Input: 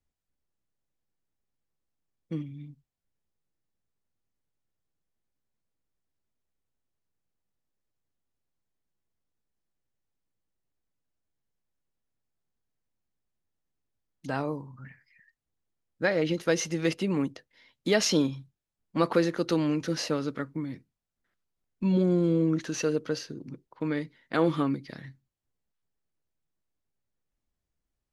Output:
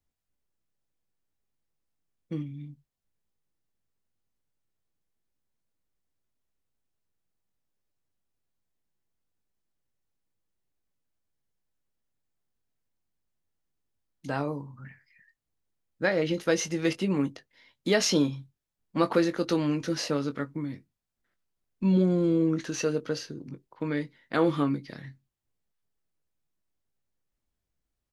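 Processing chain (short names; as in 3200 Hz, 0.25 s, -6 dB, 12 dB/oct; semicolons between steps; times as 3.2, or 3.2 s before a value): doubler 21 ms -10.5 dB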